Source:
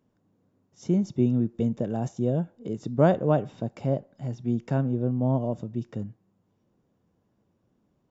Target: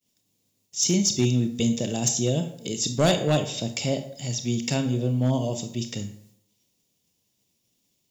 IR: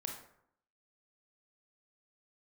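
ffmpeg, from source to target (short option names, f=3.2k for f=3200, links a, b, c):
-filter_complex "[0:a]aexciter=amount=4.9:drive=9.7:freq=2.2k,agate=range=-33dB:threshold=-58dB:ratio=3:detection=peak,asplit=2[a][b];[1:a]atrim=start_sample=2205,highshelf=f=3.4k:g=11[c];[b][c]afir=irnorm=-1:irlink=0,volume=0dB[d];[a][d]amix=inputs=2:normalize=0,asoftclip=type=hard:threshold=-9.5dB,volume=-4.5dB"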